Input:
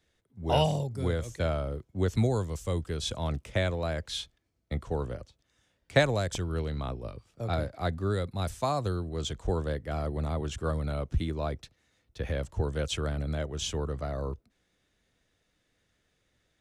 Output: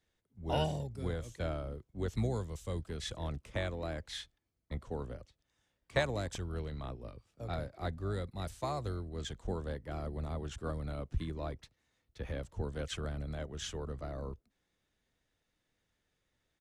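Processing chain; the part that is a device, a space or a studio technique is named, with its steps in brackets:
octave pedal (pitch-shifted copies added −12 semitones −9 dB)
level −8 dB

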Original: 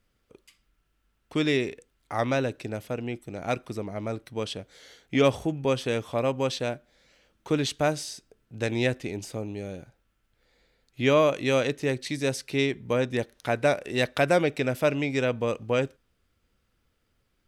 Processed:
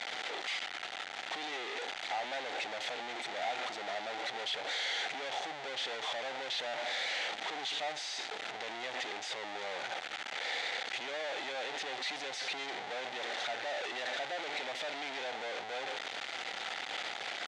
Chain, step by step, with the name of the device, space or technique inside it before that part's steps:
home computer beeper (sign of each sample alone; loudspeaker in its box 640–5,800 Hz, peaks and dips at 770 Hz +10 dB, 1,100 Hz −6 dB, 2,000 Hz +6 dB, 3,500 Hz +5 dB, 5,300 Hz −5 dB)
level −7.5 dB

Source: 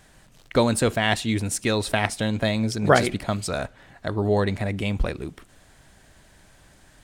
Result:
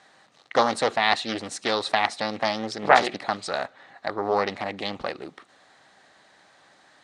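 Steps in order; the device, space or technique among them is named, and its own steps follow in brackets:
full-range speaker at full volume (highs frequency-modulated by the lows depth 0.71 ms; loudspeaker in its box 260–8,100 Hz, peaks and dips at 530 Hz +3 dB, 790 Hz +8 dB, 1,200 Hz +8 dB, 1,900 Hz +6 dB, 4,000 Hz +8 dB, 7,400 Hz −3 dB)
level −3.5 dB

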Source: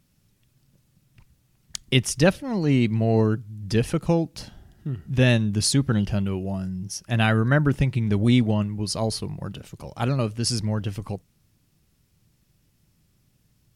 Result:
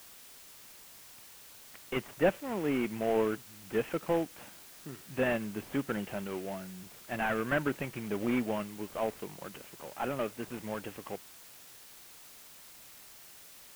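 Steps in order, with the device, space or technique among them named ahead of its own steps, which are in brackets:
army field radio (band-pass filter 350–3,300 Hz; variable-slope delta modulation 16 kbit/s; white noise bed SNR 17 dB)
level −3 dB

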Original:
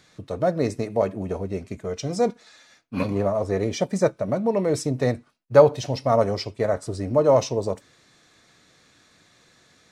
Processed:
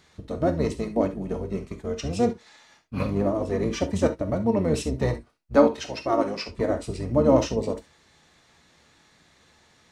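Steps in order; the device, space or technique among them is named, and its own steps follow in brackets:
0:05.55–0:06.49: meter weighting curve A
octave pedal (pitch-shifted copies added −12 semitones −3 dB)
reverb whose tail is shaped and stops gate 90 ms flat, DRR 8 dB
level −3.5 dB

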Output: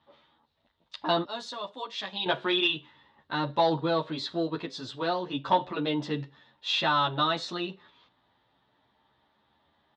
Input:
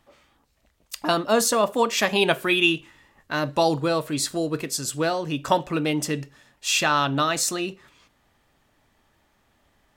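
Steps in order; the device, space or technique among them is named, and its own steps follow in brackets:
0:01.24–0:02.26: first-order pre-emphasis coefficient 0.8
barber-pole flanger into a guitar amplifier (barber-pole flanger 10.4 ms +0.3 Hz; soft clipping −14.5 dBFS, distortion −19 dB; loudspeaker in its box 96–4,000 Hz, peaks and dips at 930 Hz +7 dB, 2,400 Hz −6 dB, 3,700 Hz +10 dB)
level −2 dB

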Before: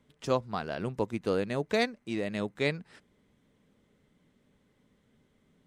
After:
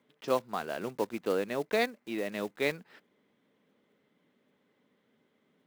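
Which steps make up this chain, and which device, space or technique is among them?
early digital voice recorder (band-pass filter 260–4,000 Hz; one scale factor per block 5 bits)

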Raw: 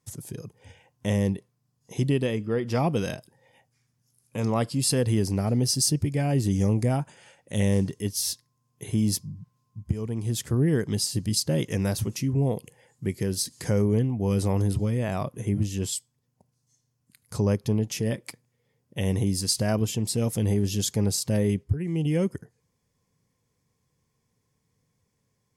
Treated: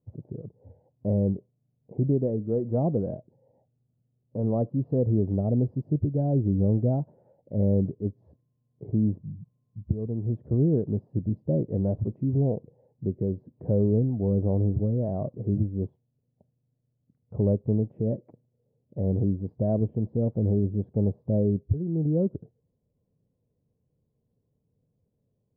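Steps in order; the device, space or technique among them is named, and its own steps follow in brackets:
under water (low-pass filter 620 Hz 24 dB per octave; parametric band 620 Hz +5 dB 0.25 octaves)

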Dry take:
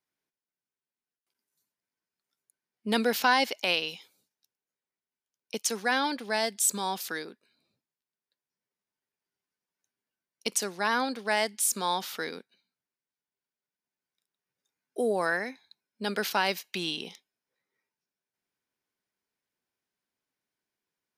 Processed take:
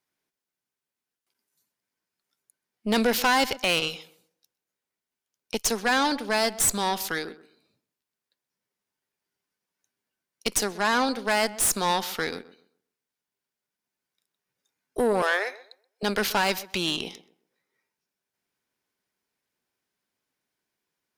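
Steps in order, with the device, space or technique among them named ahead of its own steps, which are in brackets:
rockabilly slapback (tube saturation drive 25 dB, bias 0.65; tape delay 129 ms, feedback 28%, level −15 dB, low-pass 1,500 Hz)
0:15.22–0:16.03: Butterworth high-pass 370 Hz 48 dB per octave
level +8.5 dB

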